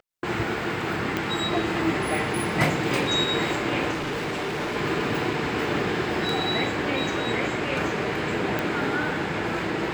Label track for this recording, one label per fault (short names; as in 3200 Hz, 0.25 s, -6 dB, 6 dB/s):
1.170000	1.170000	pop -12 dBFS
3.920000	4.770000	clipped -25.5 dBFS
8.590000	8.590000	pop